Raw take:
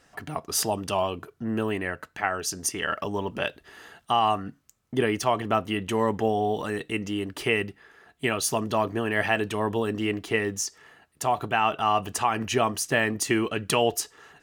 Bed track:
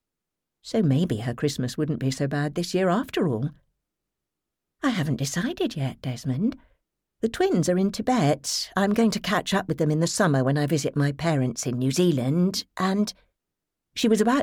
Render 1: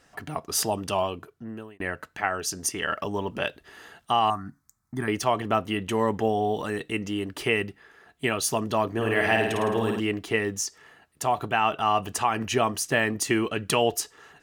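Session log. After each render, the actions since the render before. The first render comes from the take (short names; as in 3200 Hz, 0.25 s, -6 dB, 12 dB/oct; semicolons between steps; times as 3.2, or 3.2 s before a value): 1–1.8 fade out; 4.3–5.08 fixed phaser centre 1200 Hz, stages 4; 8.93–10 flutter echo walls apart 9.2 m, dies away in 0.83 s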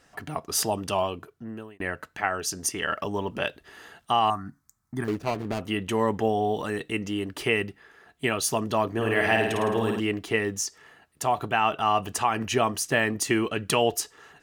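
5.04–5.61 median filter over 41 samples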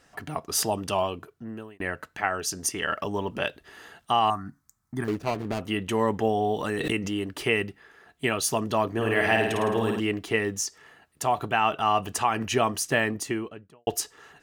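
6.61–7.11 backwards sustainer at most 25 dB/s; 12.91–13.87 studio fade out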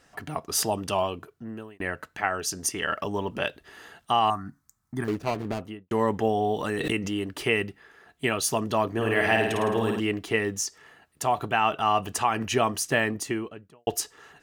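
5.46–5.91 studio fade out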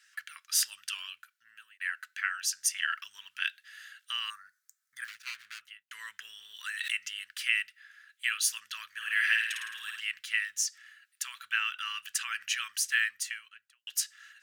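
elliptic high-pass 1500 Hz, stop band 50 dB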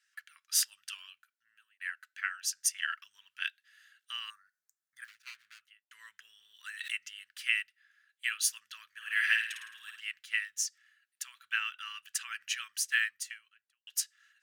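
upward expander 1.5:1, over -48 dBFS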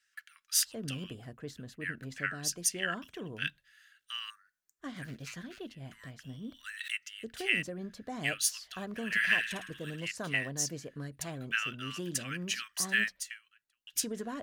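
add bed track -18.5 dB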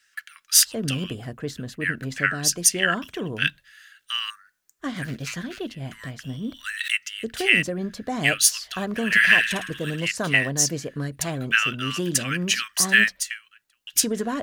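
gain +12 dB; limiter -2 dBFS, peak gain reduction 1.5 dB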